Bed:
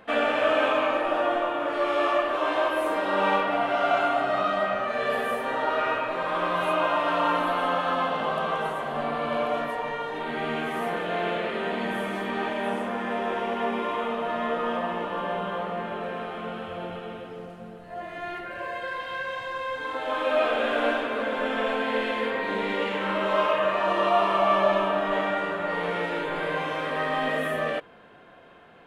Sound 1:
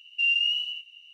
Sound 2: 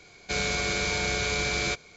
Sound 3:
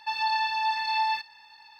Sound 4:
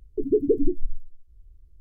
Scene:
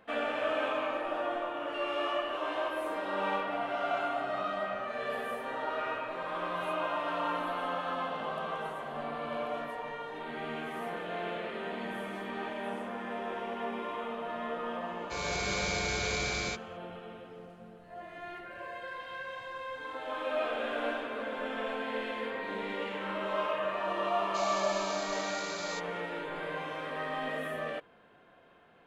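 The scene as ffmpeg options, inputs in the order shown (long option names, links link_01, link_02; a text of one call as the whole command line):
ffmpeg -i bed.wav -i cue0.wav -i cue1.wav -filter_complex "[2:a]asplit=2[link_01][link_02];[0:a]volume=-9dB[link_03];[1:a]acompressor=threshold=-41dB:ratio=6:attack=3.2:release=140:knee=1:detection=peak[link_04];[link_01]dynaudnorm=framelen=120:gausssize=7:maxgain=12dB[link_05];[link_02]asuperpass=centerf=5800:order=4:qfactor=0.8[link_06];[link_04]atrim=end=1.13,asetpts=PTS-STARTPTS,volume=-3dB,afade=type=in:duration=0.004:curve=hsin,afade=type=out:start_time=1.126:duration=0.004:curve=hsin,adelay=1560[link_07];[link_05]atrim=end=1.96,asetpts=PTS-STARTPTS,volume=-16.5dB,afade=type=in:duration=0.004:curve=hsin,afade=type=out:start_time=1.956:duration=0.004:curve=hsin,adelay=14810[link_08];[link_06]atrim=end=1.96,asetpts=PTS-STARTPTS,volume=-9.5dB,afade=type=in:duration=0.004:curve=hsin,afade=type=out:start_time=1.956:duration=0.004:curve=hsin,adelay=24050[link_09];[link_03][link_07][link_08][link_09]amix=inputs=4:normalize=0" out.wav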